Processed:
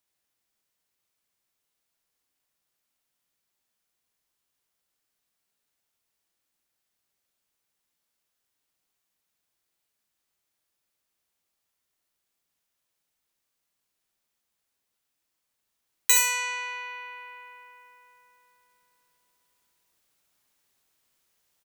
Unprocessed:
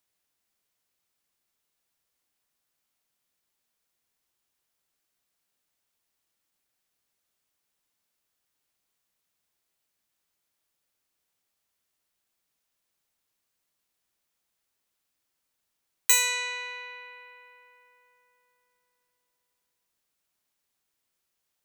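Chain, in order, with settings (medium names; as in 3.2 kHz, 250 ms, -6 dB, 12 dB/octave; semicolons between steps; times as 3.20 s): gain riding within 4 dB 2 s; on a send: early reflections 54 ms -9 dB, 72 ms -4.5 dB; on the sum: trim +1.5 dB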